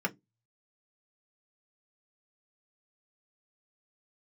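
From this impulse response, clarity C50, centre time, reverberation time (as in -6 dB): 25.5 dB, 5 ms, 0.15 s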